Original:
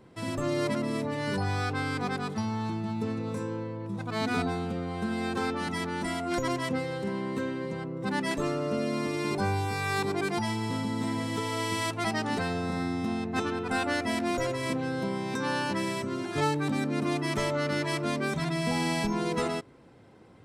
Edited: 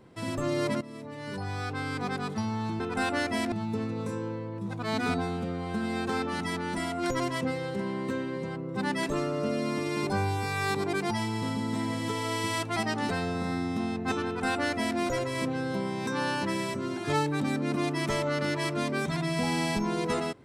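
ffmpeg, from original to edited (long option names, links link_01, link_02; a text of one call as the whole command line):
ffmpeg -i in.wav -filter_complex "[0:a]asplit=4[link_01][link_02][link_03][link_04];[link_01]atrim=end=0.81,asetpts=PTS-STARTPTS,afade=type=out:start_time=0.806:duration=0.004:curve=hsin:silence=0.177828[link_05];[link_02]atrim=start=0.81:end=2.802,asetpts=PTS-STARTPTS,afade=type=in:duration=1.45:silence=0.177828[link_06];[link_03]atrim=start=13.538:end=14.262[link_07];[link_04]atrim=start=2.798[link_08];[link_05][link_06]concat=n=2:v=0:a=1[link_09];[link_09][link_07]acrossfade=duration=0.004:curve1=hsin:curve2=hsin[link_10];[link_10][link_08]acrossfade=duration=0.004:curve1=hsin:curve2=hsin" out.wav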